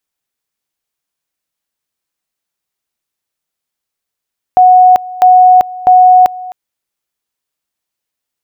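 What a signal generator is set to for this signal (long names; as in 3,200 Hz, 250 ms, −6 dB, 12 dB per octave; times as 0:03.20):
tone at two levels in turn 735 Hz −1.5 dBFS, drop 20 dB, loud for 0.39 s, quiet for 0.26 s, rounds 3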